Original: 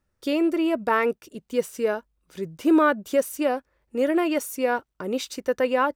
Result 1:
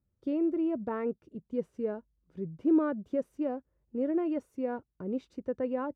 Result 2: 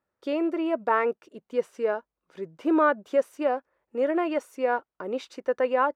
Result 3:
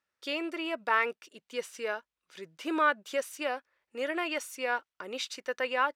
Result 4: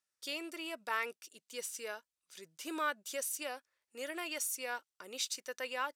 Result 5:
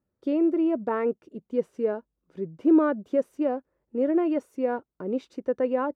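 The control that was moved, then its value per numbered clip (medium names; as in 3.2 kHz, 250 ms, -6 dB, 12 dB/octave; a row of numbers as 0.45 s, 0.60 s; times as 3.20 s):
band-pass filter, frequency: 110 Hz, 810 Hz, 2.6 kHz, 7.3 kHz, 280 Hz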